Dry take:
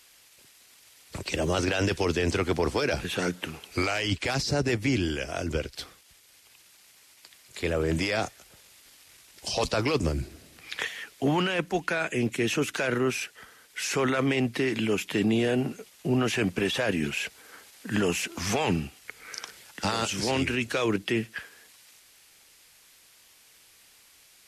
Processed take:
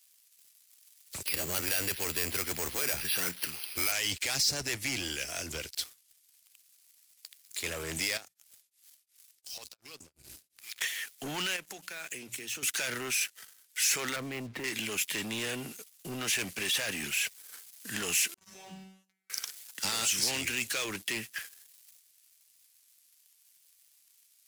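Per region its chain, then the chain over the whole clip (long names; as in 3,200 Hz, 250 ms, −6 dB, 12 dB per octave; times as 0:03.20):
0:01.26–0:03.92: spike at every zero crossing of −24.5 dBFS + bass and treble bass 0 dB, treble −7 dB + bad sample-rate conversion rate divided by 6×, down filtered, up hold
0:08.17–0:10.81: mains-hum notches 60/120/180 Hz + downward compressor 20 to 1, threshold −38 dBFS + tremolo along a rectified sine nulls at 2.8 Hz
0:11.56–0:12.63: high-pass filter 58 Hz 24 dB per octave + mains-hum notches 60/120/180 Hz + downward compressor 5 to 1, threshold −35 dBFS
0:14.16–0:14.64: low-pass filter 1,900 Hz + low-shelf EQ 470 Hz +10 dB + downward compressor, threshold −22 dBFS
0:18.34–0:19.30: high-pass filter 120 Hz 6 dB per octave + spectral tilt −3.5 dB per octave + tuned comb filter 190 Hz, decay 0.87 s, mix 100%
whole clip: dynamic equaliser 2,000 Hz, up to +4 dB, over −41 dBFS, Q 1.8; leveller curve on the samples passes 3; first-order pre-emphasis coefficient 0.9; level −3 dB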